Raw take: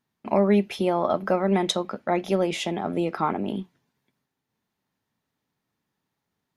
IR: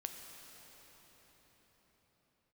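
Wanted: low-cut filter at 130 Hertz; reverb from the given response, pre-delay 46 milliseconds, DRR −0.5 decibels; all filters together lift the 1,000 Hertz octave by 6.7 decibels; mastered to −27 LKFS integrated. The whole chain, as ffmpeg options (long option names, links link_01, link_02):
-filter_complex "[0:a]highpass=130,equalizer=frequency=1000:width_type=o:gain=9,asplit=2[link_01][link_02];[1:a]atrim=start_sample=2205,adelay=46[link_03];[link_02][link_03]afir=irnorm=-1:irlink=0,volume=2.5dB[link_04];[link_01][link_04]amix=inputs=2:normalize=0,volume=-8dB"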